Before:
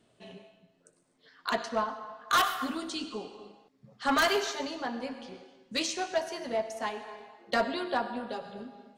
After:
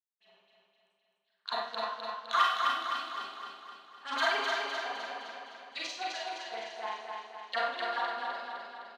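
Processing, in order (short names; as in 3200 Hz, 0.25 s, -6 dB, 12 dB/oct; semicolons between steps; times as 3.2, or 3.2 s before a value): expander -54 dBFS; power-law curve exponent 1.4; LFO band-pass sine 9.6 Hz 810–3900 Hz; on a send: feedback echo 0.256 s, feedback 56%, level -4 dB; on the sum: Schroeder reverb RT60 0.55 s, combs from 32 ms, DRR -3 dB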